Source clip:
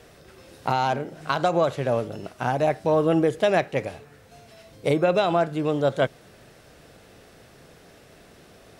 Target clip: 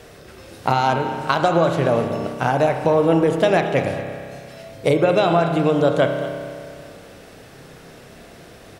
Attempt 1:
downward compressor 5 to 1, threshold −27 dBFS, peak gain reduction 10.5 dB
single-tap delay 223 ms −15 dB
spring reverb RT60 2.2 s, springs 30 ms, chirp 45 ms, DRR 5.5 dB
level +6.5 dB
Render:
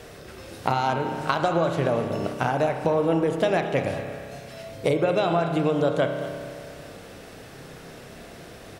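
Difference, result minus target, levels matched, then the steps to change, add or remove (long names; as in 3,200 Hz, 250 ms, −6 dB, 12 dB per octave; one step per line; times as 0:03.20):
downward compressor: peak gain reduction +6 dB
change: downward compressor 5 to 1, threshold −19.5 dBFS, peak gain reduction 4.5 dB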